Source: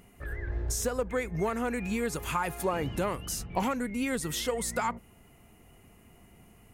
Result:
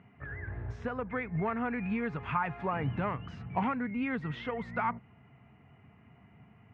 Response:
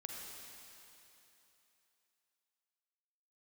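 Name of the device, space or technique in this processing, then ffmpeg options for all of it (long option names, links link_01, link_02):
bass cabinet: -af "highpass=frequency=79:width=0.5412,highpass=frequency=79:width=1.3066,equalizer=frequency=130:width_type=q:width=4:gain=6,equalizer=frequency=350:width_type=q:width=4:gain=-9,equalizer=frequency=530:width_type=q:width=4:gain=-8,lowpass=frequency=2400:width=0.5412,lowpass=frequency=2400:width=1.3066"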